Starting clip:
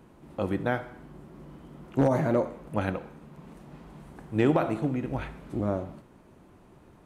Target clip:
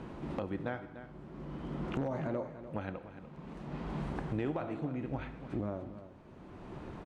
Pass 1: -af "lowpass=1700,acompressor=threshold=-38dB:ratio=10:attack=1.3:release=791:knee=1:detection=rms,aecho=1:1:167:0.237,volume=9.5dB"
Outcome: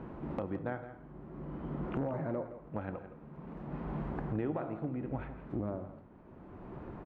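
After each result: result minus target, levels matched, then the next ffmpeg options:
echo 128 ms early; 2,000 Hz band −3.0 dB
-af "lowpass=1700,acompressor=threshold=-38dB:ratio=10:attack=1.3:release=791:knee=1:detection=rms,aecho=1:1:295:0.237,volume=9.5dB"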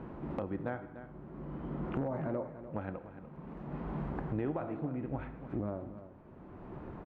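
2,000 Hz band −2.5 dB
-af "lowpass=4800,acompressor=threshold=-38dB:ratio=10:attack=1.3:release=791:knee=1:detection=rms,aecho=1:1:295:0.237,volume=9.5dB"

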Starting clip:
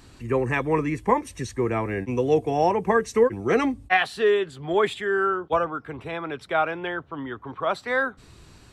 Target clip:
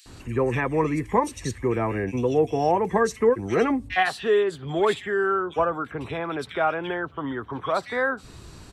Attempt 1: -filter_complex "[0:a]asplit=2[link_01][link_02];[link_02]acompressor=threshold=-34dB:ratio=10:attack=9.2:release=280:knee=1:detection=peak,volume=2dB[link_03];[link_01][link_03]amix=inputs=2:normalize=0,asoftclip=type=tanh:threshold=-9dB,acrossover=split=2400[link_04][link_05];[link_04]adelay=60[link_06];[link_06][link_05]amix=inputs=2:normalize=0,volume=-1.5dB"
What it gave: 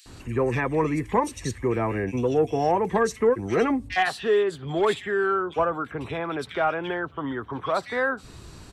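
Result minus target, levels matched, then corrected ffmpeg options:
soft clipping: distortion +15 dB
-filter_complex "[0:a]asplit=2[link_01][link_02];[link_02]acompressor=threshold=-34dB:ratio=10:attack=9.2:release=280:knee=1:detection=peak,volume=2dB[link_03];[link_01][link_03]amix=inputs=2:normalize=0,asoftclip=type=tanh:threshold=-0.5dB,acrossover=split=2400[link_04][link_05];[link_04]adelay=60[link_06];[link_06][link_05]amix=inputs=2:normalize=0,volume=-1.5dB"

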